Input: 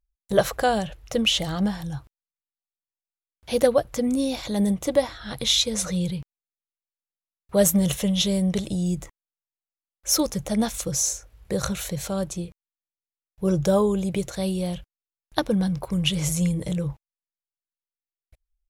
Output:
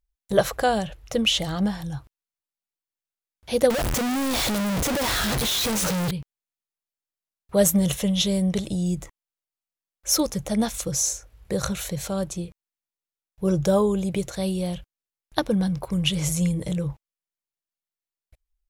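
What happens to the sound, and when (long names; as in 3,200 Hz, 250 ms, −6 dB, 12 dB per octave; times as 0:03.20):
0:03.70–0:06.11: sign of each sample alone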